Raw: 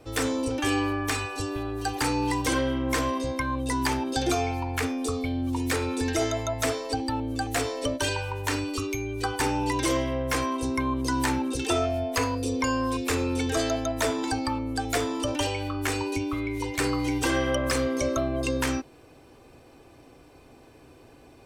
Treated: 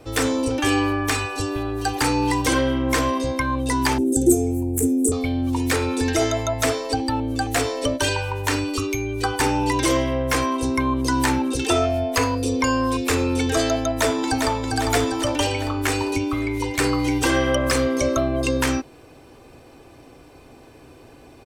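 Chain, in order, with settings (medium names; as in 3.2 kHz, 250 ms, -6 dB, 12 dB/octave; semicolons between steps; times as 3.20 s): 3.98–5.12 s: FFT filter 120 Hz 0 dB, 370 Hz +7 dB, 1.1 kHz -28 dB, 4.8 kHz -21 dB, 7.7 kHz +10 dB; 13.93–14.64 s: echo throw 400 ms, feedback 60%, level -4.5 dB; trim +5.5 dB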